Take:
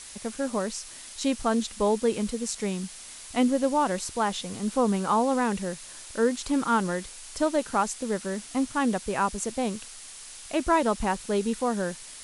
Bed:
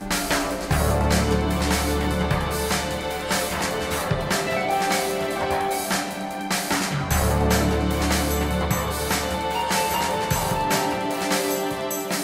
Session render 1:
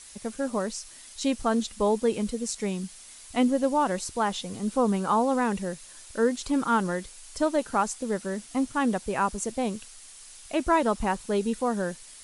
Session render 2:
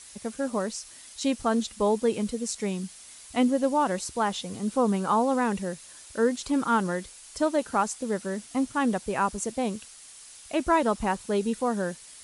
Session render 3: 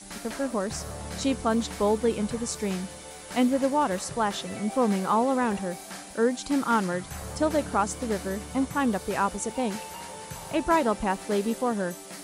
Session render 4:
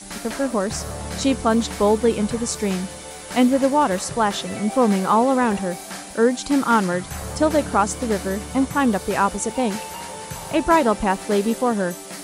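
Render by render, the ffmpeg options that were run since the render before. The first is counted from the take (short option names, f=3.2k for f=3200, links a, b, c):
-af "afftdn=nr=6:nf=-44"
-af "highpass=42"
-filter_complex "[1:a]volume=-17dB[a];[0:a][a]amix=inputs=2:normalize=0"
-af "volume=6.5dB"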